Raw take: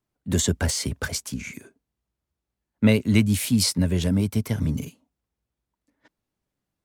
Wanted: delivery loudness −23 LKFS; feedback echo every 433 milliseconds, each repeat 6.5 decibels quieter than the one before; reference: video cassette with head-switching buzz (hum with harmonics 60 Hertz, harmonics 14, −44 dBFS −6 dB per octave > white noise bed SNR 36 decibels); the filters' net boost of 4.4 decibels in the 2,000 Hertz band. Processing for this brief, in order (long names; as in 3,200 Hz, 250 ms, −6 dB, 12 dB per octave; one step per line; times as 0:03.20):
parametric band 2,000 Hz +5.5 dB
repeating echo 433 ms, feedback 47%, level −6.5 dB
hum with harmonics 60 Hz, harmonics 14, −44 dBFS −6 dB per octave
white noise bed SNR 36 dB
level −0.5 dB